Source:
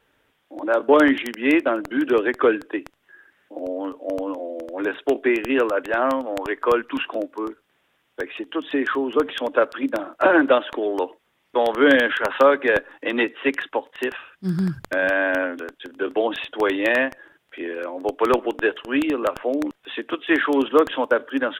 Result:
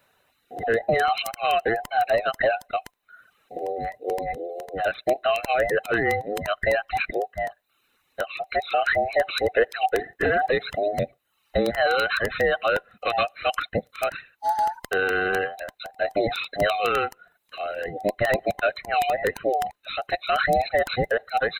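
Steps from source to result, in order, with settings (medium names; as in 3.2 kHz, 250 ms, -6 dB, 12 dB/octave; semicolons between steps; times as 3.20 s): every band turned upside down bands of 1 kHz; peak limiter -12.5 dBFS, peak gain reduction 9 dB; 8.44–10.06 s: fifteen-band graphic EQ 160 Hz -10 dB, 400 Hz +5 dB, 2.5 kHz +4 dB; reverb removal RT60 0.63 s; treble shelf 6.3 kHz +9 dB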